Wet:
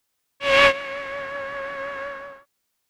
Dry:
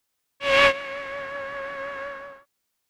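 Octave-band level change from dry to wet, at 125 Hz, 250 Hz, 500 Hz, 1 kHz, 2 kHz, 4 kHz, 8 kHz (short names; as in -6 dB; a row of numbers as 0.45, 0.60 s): +2.0, +2.0, +2.0, +2.0, +2.0, +2.0, +2.0 dB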